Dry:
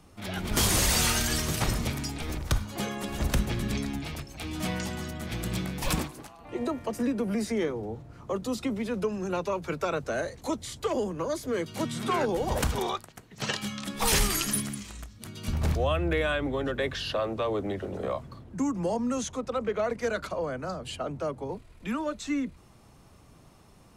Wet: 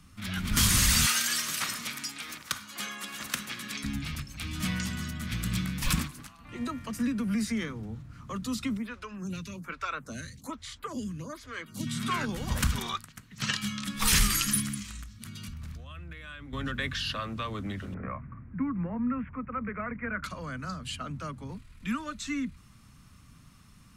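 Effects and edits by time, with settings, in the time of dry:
1.06–3.84 s: high-pass 440 Hz
8.77–11.87 s: lamp-driven phase shifter 1.2 Hz
14.97–16.53 s: compression 12:1, threshold -38 dBFS
17.94–20.24 s: steep low-pass 2.4 kHz 72 dB/octave
whole clip: high-order bell 540 Hz -15 dB; trim +1.5 dB

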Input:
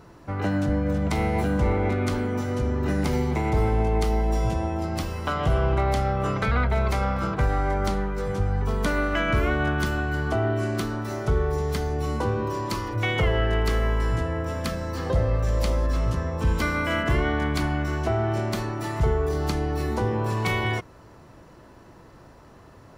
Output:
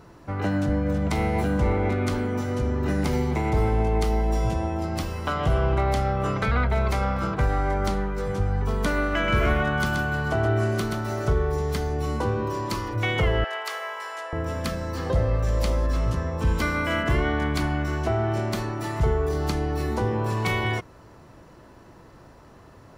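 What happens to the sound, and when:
9.11–11.33 s: delay 128 ms -4.5 dB
13.44–14.33 s: high-pass 650 Hz 24 dB/octave

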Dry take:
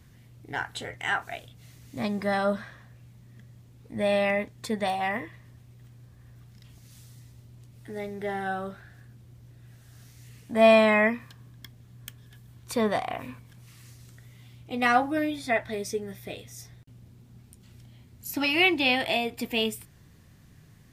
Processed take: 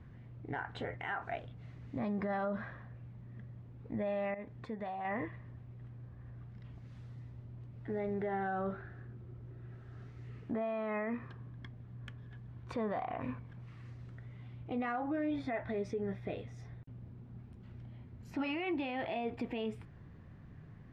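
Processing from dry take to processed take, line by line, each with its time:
4.34–5.05 s: compression 3:1, threshold -43 dBFS
8.72–11.37 s: small resonant body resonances 380/1300 Hz, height 9 dB
whole clip: low-pass 1.6 kHz 12 dB/octave; compression, threshold -27 dBFS; peak limiter -30 dBFS; trim +1.5 dB

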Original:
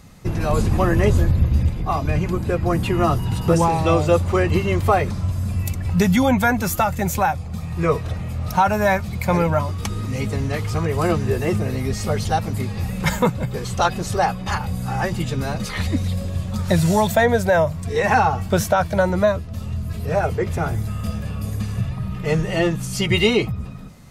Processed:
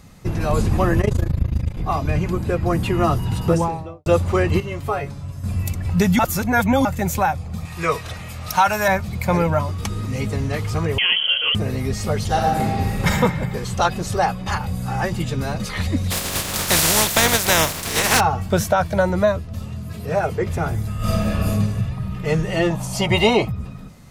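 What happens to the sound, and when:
1.01–1.77 s: AM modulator 27 Hz, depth 85%
3.40–4.06 s: studio fade out
4.60–5.44 s: feedback comb 140 Hz, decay 0.17 s, mix 80%
6.19–6.85 s: reverse
7.65–8.88 s: tilt shelf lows -7.5 dB, about 810 Hz
10.98–11.55 s: frequency inversion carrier 3.2 kHz
12.26–13.08 s: reverb throw, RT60 1.6 s, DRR -2.5 dB
16.10–18.19 s: spectral contrast reduction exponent 0.31
19.66–20.37 s: high-pass 110 Hz
20.97–21.51 s: reverb throw, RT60 0.82 s, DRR -9.5 dB
22.70–23.45 s: high-order bell 770 Hz +13 dB 1.1 oct

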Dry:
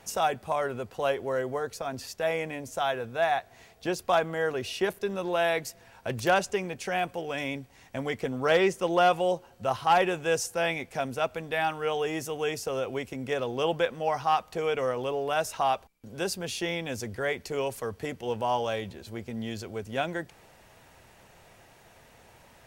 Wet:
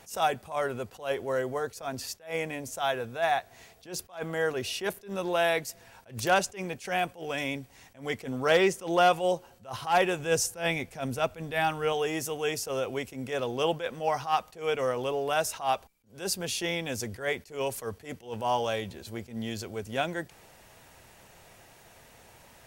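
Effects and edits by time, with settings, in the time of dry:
10.19–11.93 s: bass shelf 190 Hz +8 dB
whole clip: treble shelf 4.9 kHz +6 dB; attacks held to a fixed rise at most 180 dB/s

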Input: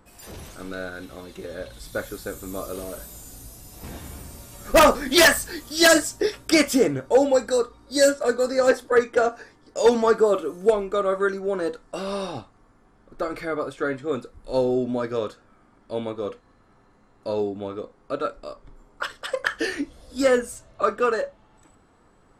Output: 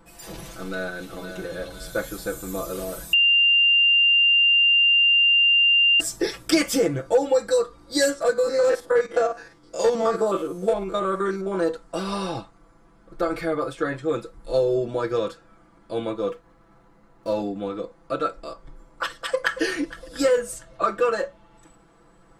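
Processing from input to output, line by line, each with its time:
0.48–1.26 s: echo throw 510 ms, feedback 50%, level -9 dB
3.13–6.00 s: bleep 2.79 kHz -10.5 dBFS
8.33–11.57 s: spectrogram pixelated in time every 50 ms
16.28–17.38 s: median filter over 9 samples
19.16–19.61 s: echo throw 230 ms, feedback 60%, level -14.5 dB
whole clip: comb 6 ms, depth 93%; compression 2.5:1, threshold -18 dBFS

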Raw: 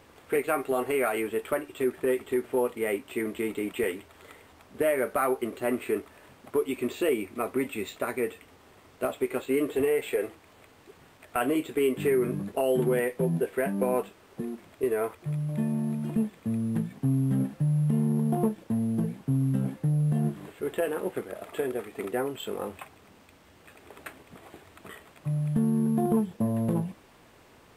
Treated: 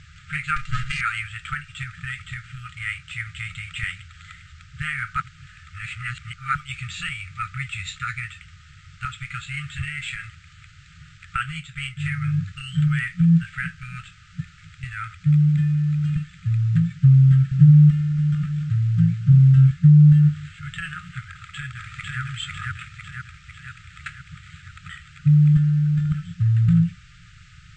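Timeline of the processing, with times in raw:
0.56–1.01 s: comb filter that takes the minimum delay 2.5 ms
5.20–6.55 s: reverse
11.36–12.10 s: upward expansion, over -33 dBFS
17.23–19.71 s: delay 284 ms -8.5 dB
21.26–22.21 s: echo throw 500 ms, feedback 60%, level -0.5 dB
whole clip: bass shelf 200 Hz +10.5 dB; FFT band-reject 180–1200 Hz; elliptic low-pass 7.6 kHz, stop band 40 dB; trim +8.5 dB

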